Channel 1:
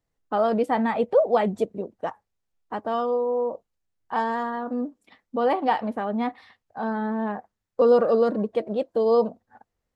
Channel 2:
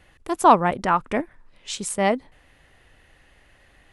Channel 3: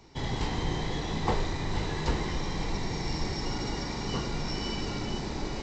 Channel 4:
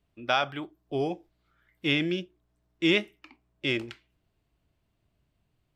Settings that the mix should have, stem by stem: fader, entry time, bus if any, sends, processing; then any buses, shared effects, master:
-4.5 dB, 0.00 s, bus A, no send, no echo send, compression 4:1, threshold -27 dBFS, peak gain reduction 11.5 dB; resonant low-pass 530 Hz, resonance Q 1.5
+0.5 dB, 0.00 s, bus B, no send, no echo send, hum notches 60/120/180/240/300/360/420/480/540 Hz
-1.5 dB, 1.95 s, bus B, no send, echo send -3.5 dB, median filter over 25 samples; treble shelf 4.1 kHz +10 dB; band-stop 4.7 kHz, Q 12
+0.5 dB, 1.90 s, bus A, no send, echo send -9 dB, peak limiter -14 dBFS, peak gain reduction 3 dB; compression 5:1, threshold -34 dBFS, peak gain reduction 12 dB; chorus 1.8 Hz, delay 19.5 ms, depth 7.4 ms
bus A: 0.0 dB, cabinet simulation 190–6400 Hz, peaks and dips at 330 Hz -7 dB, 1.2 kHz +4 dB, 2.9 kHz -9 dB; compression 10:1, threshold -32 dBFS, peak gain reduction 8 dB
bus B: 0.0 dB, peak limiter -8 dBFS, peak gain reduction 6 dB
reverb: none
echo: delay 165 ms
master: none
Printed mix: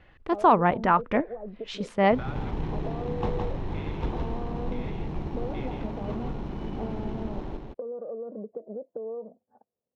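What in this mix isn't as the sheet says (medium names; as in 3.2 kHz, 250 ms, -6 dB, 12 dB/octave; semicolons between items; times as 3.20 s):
stem 2: missing hum notches 60/120/180/240/300/360/420/480/540 Hz; master: extra distance through air 260 m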